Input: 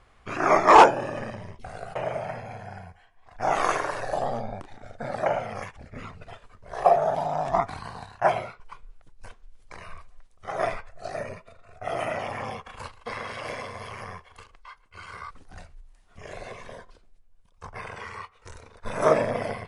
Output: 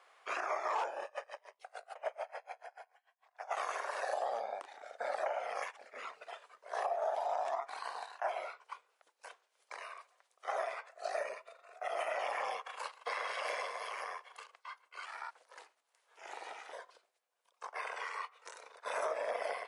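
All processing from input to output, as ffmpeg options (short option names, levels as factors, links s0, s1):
-filter_complex "[0:a]asettb=1/sr,asplit=3[s0][s1][s2];[s0]atrim=end=1.044[s3];[s1]atrim=start=1.04:end=3.57,asetpts=PTS-STARTPTS,afade=t=in:d=0.004:c=qsin,afade=t=out:st=2.526:d=0.004:c=qsin,highpass=f=430:w=0.5412,highpass=f=430:w=1.3066,aeval=exprs='val(0)*pow(10,-29*(0.5-0.5*cos(2*PI*6.8*n/s))/20)':c=same[s4];[s2]atrim=start=3.566[s5];[s3][s4]acrossfade=d=0.004:c1=hsin:c2=qsin[s6];[s6][s5]acrossfade=d=0.004:c1=qsin:c2=hsin,asettb=1/sr,asplit=3[s7][s8][s9];[s7]atrim=end=15.054[s10];[s8]atrim=start=15.05:end=16.73,asetpts=PTS-STARTPTS,afade=t=in:d=0.004:c=qsin,afade=t=out:st=1.676:d=0.004:c=qsin,highpass=210,aeval=exprs='val(0)*sin(2*PI*230*n/s)':c=same[s11];[s9]atrim=start=16.726[s12];[s10][s11]acrossfade=d=0.004:c1=hsin:c2=qsin[s13];[s13][s12]acrossfade=d=0.004:c1=qsin:c2=hsin,highpass=f=510:w=0.5412,highpass=f=510:w=1.3066,acompressor=threshold=0.0355:ratio=2.5,alimiter=limit=0.0668:level=0:latency=1:release=178,volume=0.794"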